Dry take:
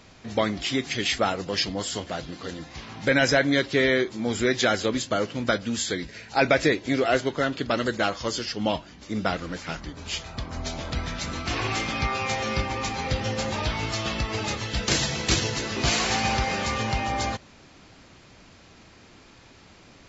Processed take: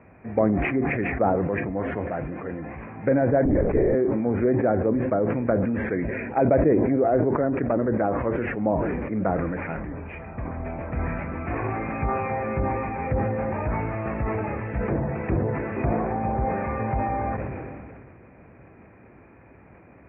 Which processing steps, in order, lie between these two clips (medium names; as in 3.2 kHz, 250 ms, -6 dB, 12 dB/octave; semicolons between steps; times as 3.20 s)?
high-pass 45 Hz 24 dB/octave; low-pass that closes with the level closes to 810 Hz, closed at -20.5 dBFS; rippled Chebyshev low-pass 2.5 kHz, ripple 3 dB; tilt shelf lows +4 dB, about 1.3 kHz; bucket-brigade echo 552 ms, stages 2048, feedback 75%, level -23.5 dB; 3.45–3.95 s: LPC vocoder at 8 kHz whisper; decay stretcher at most 26 dB/s